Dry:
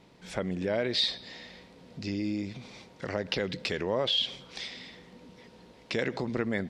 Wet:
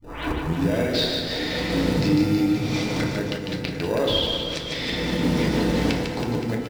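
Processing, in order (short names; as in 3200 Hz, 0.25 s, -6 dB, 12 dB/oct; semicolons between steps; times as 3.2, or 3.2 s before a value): tape start at the beginning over 0.56 s; recorder AGC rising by 39 dB/s; in parallel at -7.5 dB: sample-and-hold 41×; on the sum: flipped gate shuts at -14 dBFS, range -28 dB; on a send: reverse bouncing-ball echo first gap 0.15 s, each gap 1.15×, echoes 5; on the sum: FDN reverb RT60 0.85 s, low-frequency decay 1.3×, high-frequency decay 0.45×, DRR 0.5 dB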